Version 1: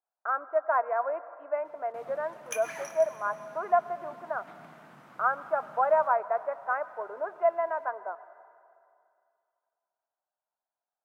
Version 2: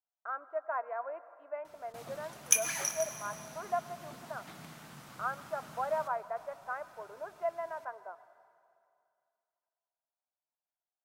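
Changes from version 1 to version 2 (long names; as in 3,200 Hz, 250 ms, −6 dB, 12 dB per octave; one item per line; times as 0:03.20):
speech −9.5 dB
master: remove three-way crossover with the lows and the highs turned down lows −14 dB, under 170 Hz, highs −15 dB, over 2,400 Hz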